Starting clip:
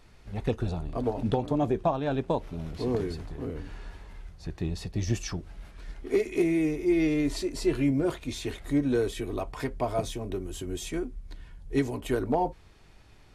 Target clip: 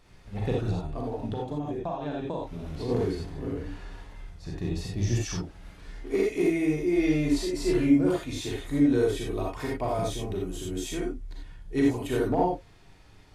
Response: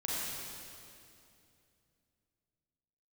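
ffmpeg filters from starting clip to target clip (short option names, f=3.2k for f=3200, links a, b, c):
-filter_complex "[1:a]atrim=start_sample=2205,atrim=end_sample=4410[a];[0:a][a]afir=irnorm=-1:irlink=0,asplit=3[b][c][d];[b]afade=t=out:st=0.8:d=0.02[e];[c]acompressor=threshold=-29dB:ratio=6,afade=t=in:st=0.8:d=0.02,afade=t=out:st=2.88:d=0.02[f];[d]afade=t=in:st=2.88:d=0.02[g];[e][f][g]amix=inputs=3:normalize=0"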